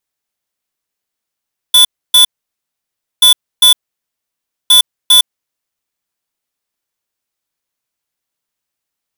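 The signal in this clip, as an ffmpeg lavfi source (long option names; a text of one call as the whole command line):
ffmpeg -f lavfi -i "aevalsrc='0.531*(2*lt(mod(3470*t,1),0.5)-1)*clip(min(mod(mod(t,1.48),0.4),0.11-mod(mod(t,1.48),0.4))/0.005,0,1)*lt(mod(t,1.48),0.8)':duration=4.44:sample_rate=44100" out.wav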